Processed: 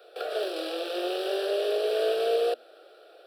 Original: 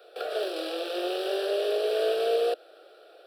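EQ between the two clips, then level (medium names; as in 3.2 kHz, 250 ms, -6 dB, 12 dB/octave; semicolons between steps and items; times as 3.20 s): hum notches 60/120/180/240 Hz; 0.0 dB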